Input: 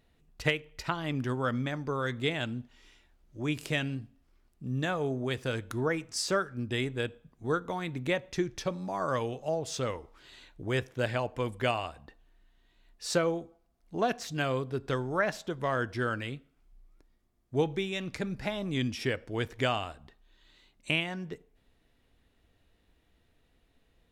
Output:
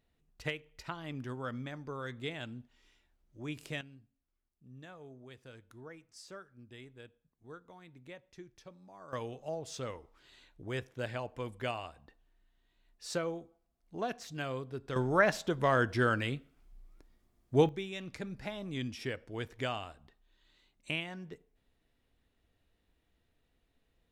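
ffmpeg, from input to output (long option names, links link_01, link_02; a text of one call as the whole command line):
ffmpeg -i in.wav -af "asetnsamples=nb_out_samples=441:pad=0,asendcmd='3.81 volume volume -20dB;9.13 volume volume -7.5dB;14.96 volume volume 2.5dB;17.69 volume volume -7dB',volume=-9dB" out.wav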